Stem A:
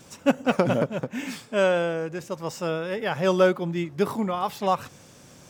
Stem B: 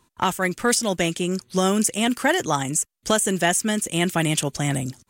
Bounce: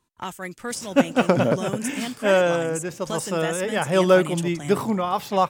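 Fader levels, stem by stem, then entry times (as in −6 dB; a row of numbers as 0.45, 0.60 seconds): +3.0, −10.5 decibels; 0.70, 0.00 seconds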